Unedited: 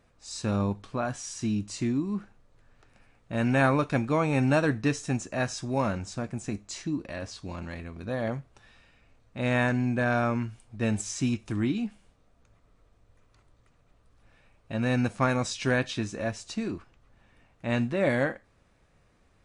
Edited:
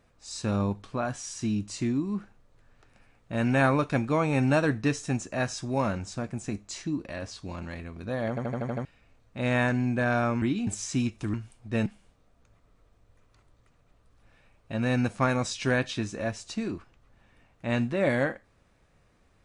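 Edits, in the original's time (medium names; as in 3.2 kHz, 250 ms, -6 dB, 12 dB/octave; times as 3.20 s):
8.29 s: stutter in place 0.08 s, 7 plays
10.42–10.94 s: swap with 11.61–11.86 s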